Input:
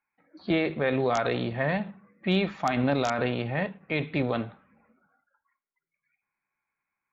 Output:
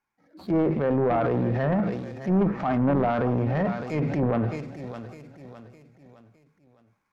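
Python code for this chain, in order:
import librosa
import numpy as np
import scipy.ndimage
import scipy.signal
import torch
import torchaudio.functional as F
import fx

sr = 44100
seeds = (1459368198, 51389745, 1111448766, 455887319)

p1 = scipy.signal.medfilt(x, 15)
p2 = fx.low_shelf(p1, sr, hz=320.0, db=5.0)
p3 = p2 + fx.echo_feedback(p2, sr, ms=610, feedback_pct=41, wet_db=-15, dry=0)
p4 = fx.env_lowpass_down(p3, sr, base_hz=1100.0, full_db=-20.0)
p5 = fx.transient(p4, sr, attack_db=-7, sustain_db=7)
p6 = fx.fold_sine(p5, sr, drive_db=6, ceiling_db=-12.0)
p7 = p5 + F.gain(torch.from_numpy(p6), -5.0).numpy()
y = F.gain(torch.from_numpy(p7), -5.5).numpy()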